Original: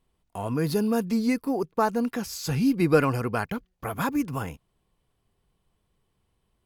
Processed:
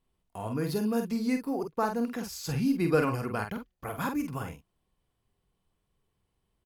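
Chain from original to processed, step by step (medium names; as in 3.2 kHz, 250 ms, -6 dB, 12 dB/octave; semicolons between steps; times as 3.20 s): doubling 47 ms -6 dB; trim -5.5 dB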